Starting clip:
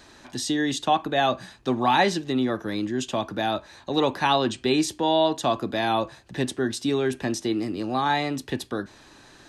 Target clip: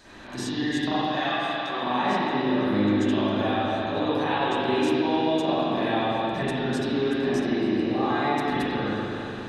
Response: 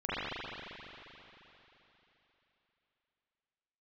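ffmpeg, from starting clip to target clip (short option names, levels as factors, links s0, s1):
-filter_complex "[0:a]asettb=1/sr,asplit=3[s0][s1][s2];[s0]atrim=end=0.984[s3];[s1]atrim=start=0.98:end=1.83,asetpts=PTS-STARTPTS,afade=t=in:d=0.004:c=qsin,afade=t=out:st=0.846:d=0.004:c=qsin,highpass=1000[s4];[s2]atrim=start=1.826[s5];[s3][s4]acrossfade=d=0.004:c1=hsin:c2=qsin[s6];[s6][s5]acrossfade=d=0.004:c1=qsin:c2=hsin,acompressor=threshold=0.0282:ratio=6[s7];[1:a]atrim=start_sample=2205[s8];[s7][s8]afir=irnorm=-1:irlink=0"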